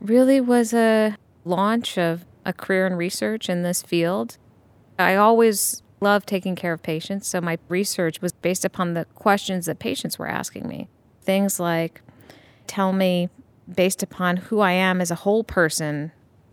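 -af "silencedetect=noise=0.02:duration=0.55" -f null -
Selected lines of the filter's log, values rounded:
silence_start: 4.32
silence_end: 4.99 | silence_duration: 0.67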